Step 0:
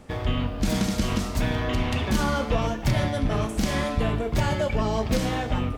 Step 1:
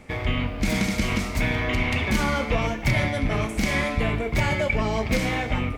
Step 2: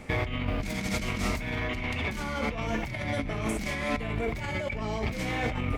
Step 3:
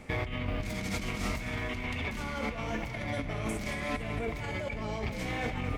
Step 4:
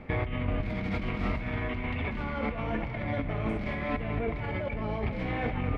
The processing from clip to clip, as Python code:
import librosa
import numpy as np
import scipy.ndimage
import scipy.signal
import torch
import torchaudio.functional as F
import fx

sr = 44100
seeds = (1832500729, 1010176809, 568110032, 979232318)

y1 = fx.peak_eq(x, sr, hz=2200.0, db=14.0, octaves=0.32)
y2 = fx.over_compress(y1, sr, threshold_db=-29.0, ratio=-1.0)
y2 = F.gain(torch.from_numpy(y2), -2.0).numpy()
y3 = fx.echo_feedback(y2, sr, ms=226, feedback_pct=56, wet_db=-11)
y3 = F.gain(torch.from_numpy(y3), -4.0).numpy()
y4 = fx.air_absorb(y3, sr, metres=400.0)
y4 = F.gain(torch.from_numpy(y4), 4.0).numpy()